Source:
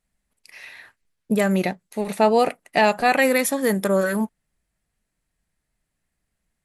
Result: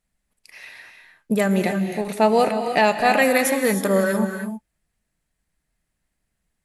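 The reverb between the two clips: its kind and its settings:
reverb whose tail is shaped and stops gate 340 ms rising, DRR 6 dB

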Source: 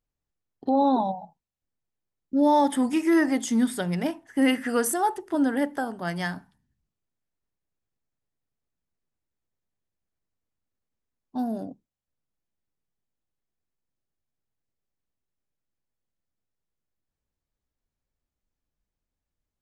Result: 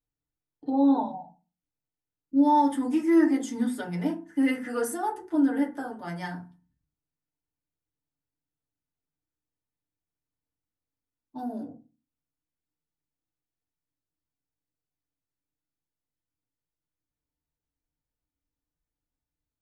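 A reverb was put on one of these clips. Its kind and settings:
feedback delay network reverb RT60 0.31 s, low-frequency decay 1.45×, high-frequency decay 0.45×, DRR −3 dB
level −10.5 dB

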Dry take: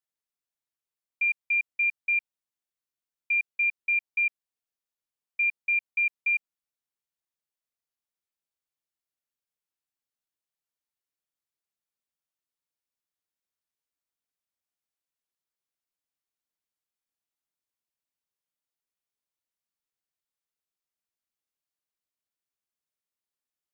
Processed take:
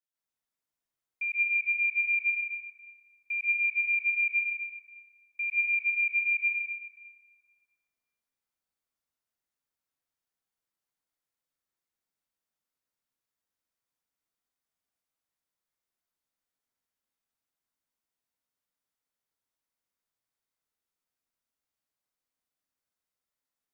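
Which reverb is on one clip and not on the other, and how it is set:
dense smooth reverb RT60 2.4 s, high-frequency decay 0.4×, pre-delay 115 ms, DRR −9.5 dB
level −7 dB

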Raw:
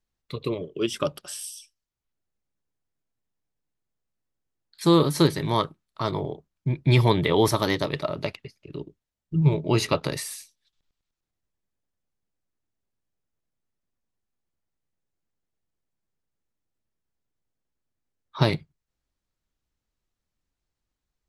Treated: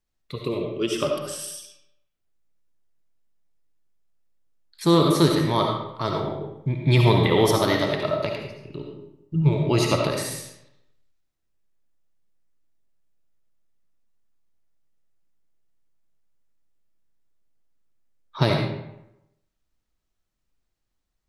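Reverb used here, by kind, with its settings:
comb and all-pass reverb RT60 0.86 s, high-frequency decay 0.7×, pre-delay 30 ms, DRR 1 dB

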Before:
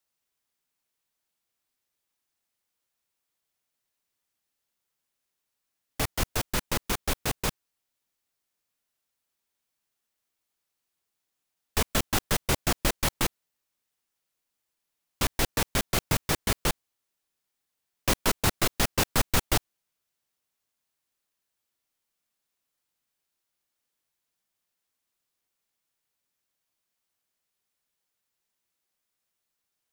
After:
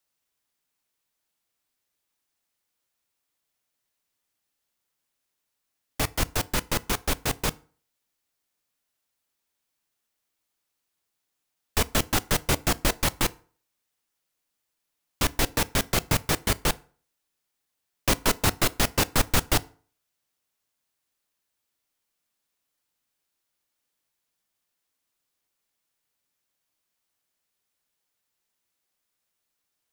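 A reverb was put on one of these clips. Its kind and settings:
feedback delay network reverb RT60 0.44 s, low-frequency decay 0.95×, high-frequency decay 0.7×, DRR 16.5 dB
level +2 dB

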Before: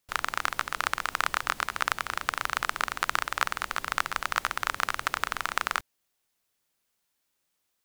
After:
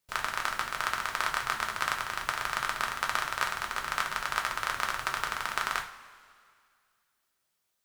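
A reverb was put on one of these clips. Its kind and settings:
coupled-rooms reverb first 0.37 s, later 2.2 s, from −18 dB, DRR 1 dB
level −4 dB

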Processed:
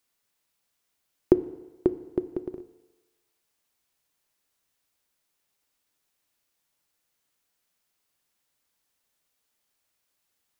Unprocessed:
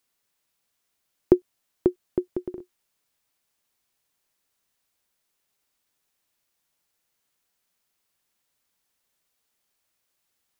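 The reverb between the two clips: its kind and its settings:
feedback delay network reverb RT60 1.2 s, low-frequency decay 0.75×, high-frequency decay 0.9×, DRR 12 dB
level −1 dB

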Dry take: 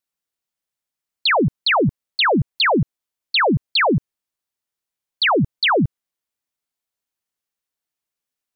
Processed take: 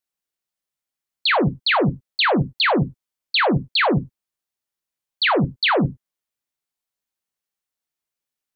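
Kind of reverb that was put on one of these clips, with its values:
reverb whose tail is shaped and stops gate 120 ms falling, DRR 8.5 dB
level −2 dB

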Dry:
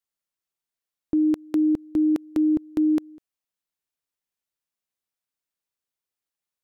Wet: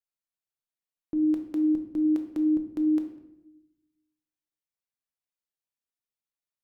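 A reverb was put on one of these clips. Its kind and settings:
rectangular room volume 280 cubic metres, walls mixed, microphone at 0.65 metres
level −9 dB

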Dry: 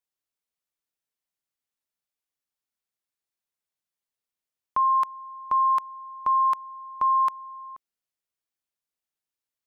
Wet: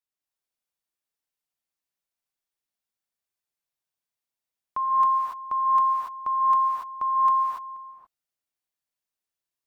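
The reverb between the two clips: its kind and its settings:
reverb whose tail is shaped and stops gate 310 ms rising, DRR −3.5 dB
level −5 dB

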